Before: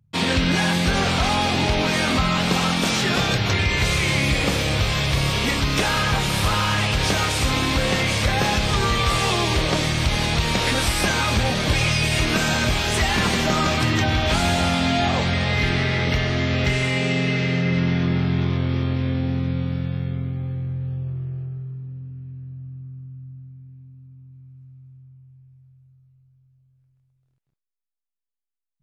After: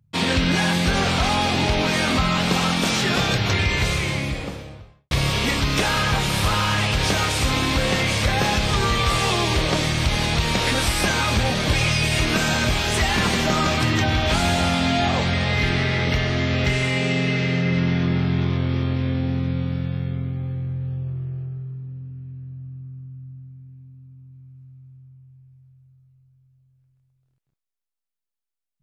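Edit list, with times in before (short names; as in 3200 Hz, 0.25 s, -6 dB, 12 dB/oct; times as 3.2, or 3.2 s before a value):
3.63–5.11 studio fade out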